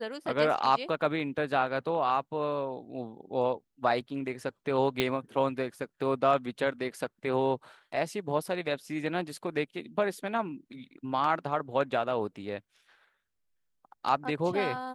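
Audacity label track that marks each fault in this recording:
5.000000	5.000000	click −12 dBFS

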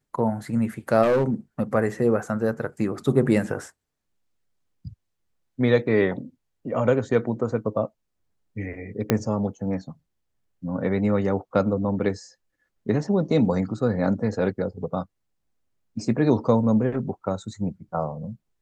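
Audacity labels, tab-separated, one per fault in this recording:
1.020000	1.300000	clipping −16.5 dBFS
9.100000	9.100000	click −5 dBFS

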